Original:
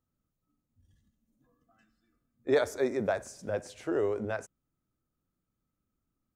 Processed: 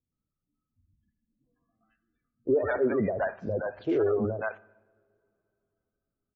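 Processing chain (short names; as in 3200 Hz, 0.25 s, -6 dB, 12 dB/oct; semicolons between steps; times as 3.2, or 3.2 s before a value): LPF 3200 Hz 24 dB/oct; sample leveller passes 2; spectral gate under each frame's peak -25 dB strong; bands offset in time lows, highs 0.12 s, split 590 Hz; two-slope reverb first 0.94 s, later 3.4 s, from -21 dB, DRR 19 dB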